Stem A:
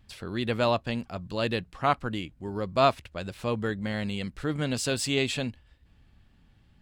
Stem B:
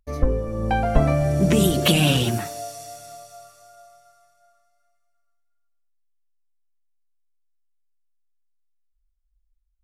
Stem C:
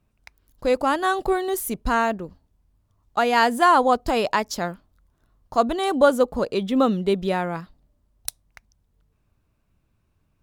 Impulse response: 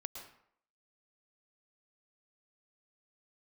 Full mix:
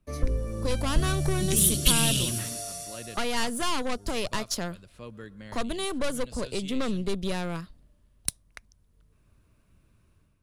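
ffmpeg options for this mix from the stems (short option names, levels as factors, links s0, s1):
-filter_complex "[0:a]adelay=1550,volume=0.2,asplit=2[s0][s1];[s1]volume=0.224[s2];[1:a]bandreject=f=60:t=h:w=6,bandreject=f=120:t=h:w=6,acrossover=split=500|3000[s3][s4][s5];[s4]acompressor=threshold=0.0224:ratio=6[s6];[s3][s6][s5]amix=inputs=3:normalize=0,adynamicequalizer=threshold=0.00794:dfrequency=1600:dqfactor=0.7:tfrequency=1600:tqfactor=0.7:attack=5:release=100:ratio=0.375:range=3:mode=boostabove:tftype=highshelf,volume=0.501,asplit=2[s7][s8];[s8]volume=0.473[s9];[2:a]dynaudnorm=f=390:g=3:m=2.82,aeval=exprs='(tanh(5.62*val(0)+0.6)-tanh(0.6))/5.62':c=same,volume=0.944[s10];[3:a]atrim=start_sample=2205[s11];[s2][s9]amix=inputs=2:normalize=0[s12];[s12][s11]afir=irnorm=-1:irlink=0[s13];[s0][s7][s10][s13]amix=inputs=4:normalize=0,equalizer=f=800:t=o:w=0.33:g=-8,equalizer=f=10000:t=o:w=0.33:g=8,equalizer=f=16000:t=o:w=0.33:g=-12,acrossover=split=130|3000[s14][s15][s16];[s15]acompressor=threshold=0.0141:ratio=2[s17];[s14][s17][s16]amix=inputs=3:normalize=0"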